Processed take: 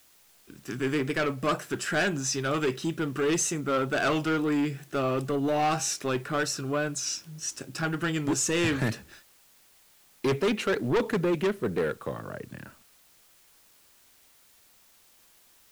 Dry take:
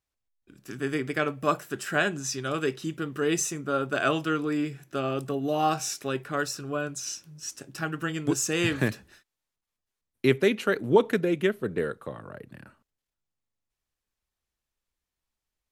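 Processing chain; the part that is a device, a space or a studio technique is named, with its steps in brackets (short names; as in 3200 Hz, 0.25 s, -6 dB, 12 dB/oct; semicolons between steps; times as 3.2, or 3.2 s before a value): compact cassette (soft clip -25.5 dBFS, distortion -7 dB; LPF 10000 Hz 12 dB/oct; wow and flutter; white noise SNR 30 dB); gain +4.5 dB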